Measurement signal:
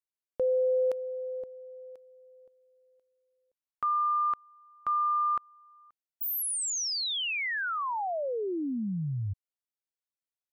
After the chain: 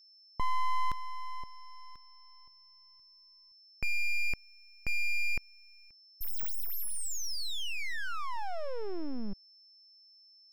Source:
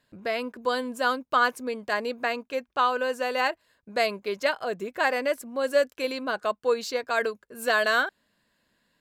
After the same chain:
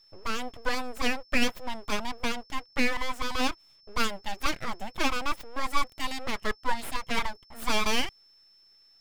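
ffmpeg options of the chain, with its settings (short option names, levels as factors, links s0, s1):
-af "aeval=exprs='abs(val(0))':c=same,aeval=exprs='val(0)+0.00141*sin(2*PI*5300*n/s)':c=same"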